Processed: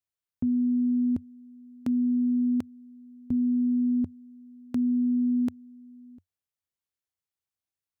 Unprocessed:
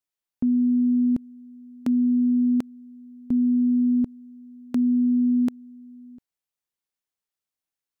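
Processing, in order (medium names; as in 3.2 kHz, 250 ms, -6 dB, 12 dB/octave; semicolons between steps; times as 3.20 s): peaking EQ 91 Hz +14.5 dB 0.66 oct; trim -5 dB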